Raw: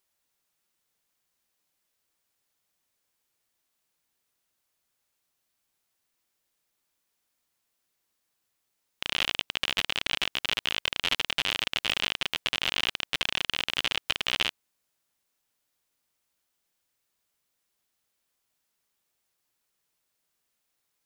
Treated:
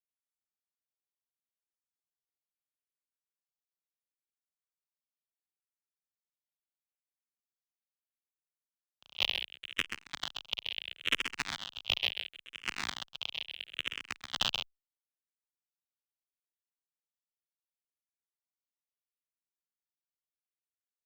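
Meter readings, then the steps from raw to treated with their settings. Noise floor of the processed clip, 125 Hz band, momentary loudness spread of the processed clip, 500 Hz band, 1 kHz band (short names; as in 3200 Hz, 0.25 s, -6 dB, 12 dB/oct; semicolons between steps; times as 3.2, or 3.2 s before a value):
under -85 dBFS, -8.0 dB, 8 LU, -9.5 dB, -7.5 dB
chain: gate -27 dBFS, range -28 dB; echo 0.131 s -6.5 dB; endless phaser -0.73 Hz; gain +3 dB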